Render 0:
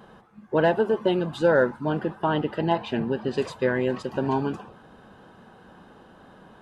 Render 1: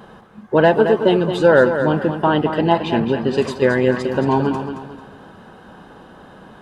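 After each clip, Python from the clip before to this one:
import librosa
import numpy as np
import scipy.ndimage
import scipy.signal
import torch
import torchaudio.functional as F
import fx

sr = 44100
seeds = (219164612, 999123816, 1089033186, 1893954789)

y = fx.echo_feedback(x, sr, ms=222, feedback_pct=35, wet_db=-8.5)
y = y * 10.0 ** (7.5 / 20.0)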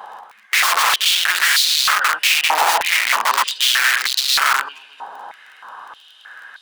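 y = (np.mod(10.0 ** (16.5 / 20.0) * x + 1.0, 2.0) - 1.0) / 10.0 ** (16.5 / 20.0)
y = fx.dmg_crackle(y, sr, seeds[0], per_s=23.0, level_db=-37.0)
y = fx.filter_held_highpass(y, sr, hz=3.2, low_hz=860.0, high_hz=4000.0)
y = y * 10.0 ** (3.0 / 20.0)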